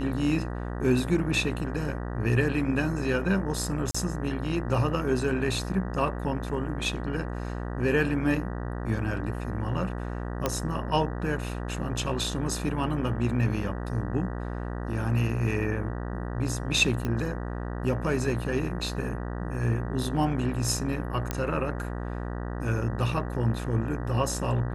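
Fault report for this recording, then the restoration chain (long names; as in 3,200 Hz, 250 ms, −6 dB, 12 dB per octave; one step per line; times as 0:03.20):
mains buzz 60 Hz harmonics 32 −33 dBFS
0:03.91–0:03.94: drop-out 35 ms
0:10.46: click −11 dBFS
0:17.05: click −17 dBFS
0:21.31: click −13 dBFS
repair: click removal
hum removal 60 Hz, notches 32
repair the gap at 0:03.91, 35 ms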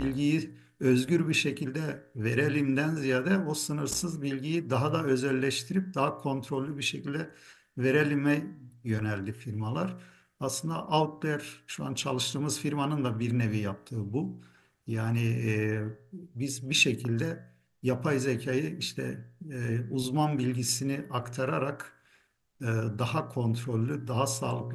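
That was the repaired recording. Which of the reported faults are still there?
none of them is left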